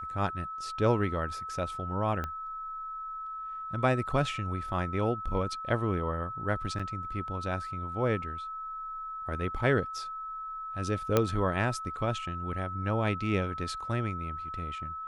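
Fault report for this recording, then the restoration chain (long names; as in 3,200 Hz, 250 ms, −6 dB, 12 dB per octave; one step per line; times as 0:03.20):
whistle 1,300 Hz −36 dBFS
0:02.24: click −21 dBFS
0:06.79–0:06.80: drop-out 5.7 ms
0:11.17: click −10 dBFS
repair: click removal
notch filter 1,300 Hz, Q 30
repair the gap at 0:06.79, 5.7 ms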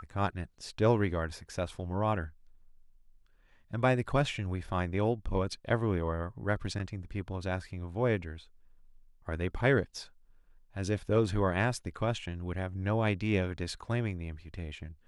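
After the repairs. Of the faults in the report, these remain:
0:02.24: click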